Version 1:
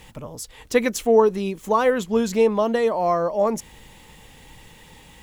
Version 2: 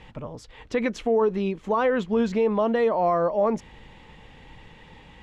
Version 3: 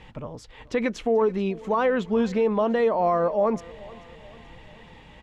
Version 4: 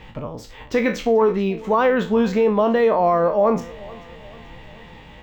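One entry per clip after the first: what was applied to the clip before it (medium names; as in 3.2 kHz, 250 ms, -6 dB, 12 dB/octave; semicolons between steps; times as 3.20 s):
low-pass 3 kHz 12 dB/octave; peak limiter -14 dBFS, peak gain reduction 9 dB
feedback delay 435 ms, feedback 52%, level -22 dB
spectral sustain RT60 0.32 s; decimation joined by straight lines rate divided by 2×; trim +4.5 dB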